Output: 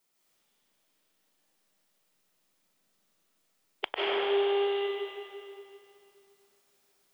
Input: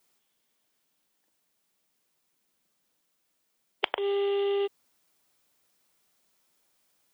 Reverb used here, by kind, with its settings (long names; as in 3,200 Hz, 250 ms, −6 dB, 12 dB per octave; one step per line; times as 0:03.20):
comb and all-pass reverb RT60 2.6 s, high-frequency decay 0.85×, pre-delay 115 ms, DRR −7.5 dB
level −5.5 dB